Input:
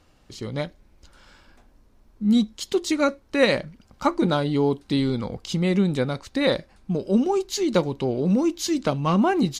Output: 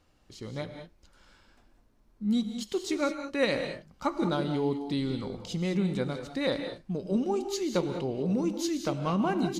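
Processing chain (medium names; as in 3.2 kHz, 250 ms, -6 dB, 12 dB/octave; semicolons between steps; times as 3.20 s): gated-style reverb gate 230 ms rising, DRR 7 dB; trim -8 dB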